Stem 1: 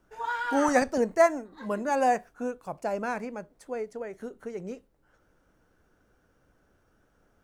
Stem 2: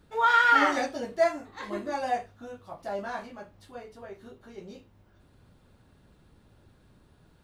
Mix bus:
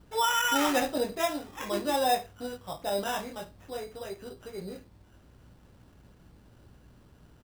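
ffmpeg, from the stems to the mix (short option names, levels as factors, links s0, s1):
-filter_complex "[0:a]volume=0.531[s0];[1:a]alimiter=limit=0.0944:level=0:latency=1:release=162,adelay=3.6,volume=1.19[s1];[s0][s1]amix=inputs=2:normalize=0,acrossover=split=3100[s2][s3];[s3]acompressor=threshold=0.00141:ratio=4:attack=1:release=60[s4];[s2][s4]amix=inputs=2:normalize=0,aeval=exprs='val(0)+0.00112*(sin(2*PI*60*n/s)+sin(2*PI*2*60*n/s)/2+sin(2*PI*3*60*n/s)/3+sin(2*PI*4*60*n/s)/4+sin(2*PI*5*60*n/s)/5)':c=same,acrusher=samples=10:mix=1:aa=0.000001"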